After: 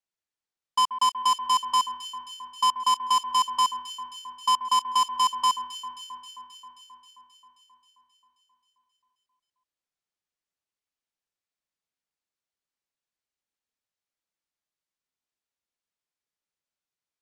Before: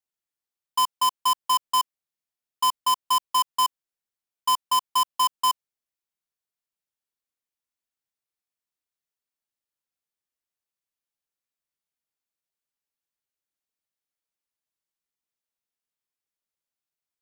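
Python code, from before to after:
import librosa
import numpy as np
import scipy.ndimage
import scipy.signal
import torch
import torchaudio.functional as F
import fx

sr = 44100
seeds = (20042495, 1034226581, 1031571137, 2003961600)

p1 = scipy.signal.sosfilt(scipy.signal.butter(2, 7700.0, 'lowpass', fs=sr, output='sos'), x)
y = p1 + fx.echo_alternate(p1, sr, ms=133, hz=2100.0, feedback_pct=83, wet_db=-11, dry=0)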